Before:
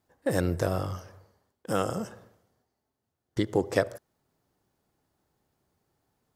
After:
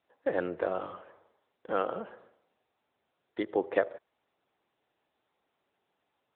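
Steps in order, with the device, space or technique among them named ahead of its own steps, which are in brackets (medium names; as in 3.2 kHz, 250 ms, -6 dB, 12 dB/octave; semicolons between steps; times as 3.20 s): telephone (band-pass 380–3200 Hz; AMR-NB 10.2 kbps 8 kHz)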